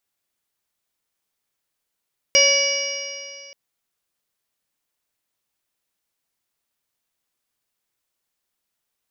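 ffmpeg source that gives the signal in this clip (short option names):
-f lavfi -i "aevalsrc='0.119*pow(10,-3*t/2.34)*sin(2*PI*557.89*t)+0.015*pow(10,-3*t/2.34)*sin(2*PI*1121.11*t)+0.0188*pow(10,-3*t/2.34)*sin(2*PI*1694.89*t)+0.15*pow(10,-3*t/2.34)*sin(2*PI*2284.32*t)+0.106*pow(10,-3*t/2.34)*sin(2*PI*2894.26*t)+0.0133*pow(10,-3*t/2.34)*sin(2*PI*3529.25*t)+0.0141*pow(10,-3*t/2.34)*sin(2*PI*4193.56*t)+0.126*pow(10,-3*t/2.34)*sin(2*PI*4891.06*t)+0.188*pow(10,-3*t/2.34)*sin(2*PI*5625.29*t)+0.0188*pow(10,-3*t/2.34)*sin(2*PI*6399.44*t)':d=1.18:s=44100"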